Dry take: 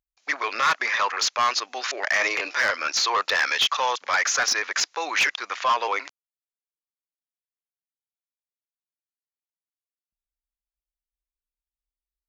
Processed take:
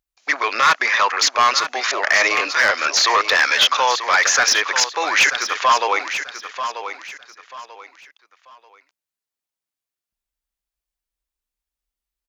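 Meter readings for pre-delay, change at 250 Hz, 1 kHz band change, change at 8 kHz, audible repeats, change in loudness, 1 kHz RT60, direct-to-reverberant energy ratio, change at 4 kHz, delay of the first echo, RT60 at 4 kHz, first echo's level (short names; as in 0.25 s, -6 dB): none, +6.5 dB, +7.0 dB, +7.0 dB, 3, +6.5 dB, none, none, +7.0 dB, 0.938 s, none, -10.0 dB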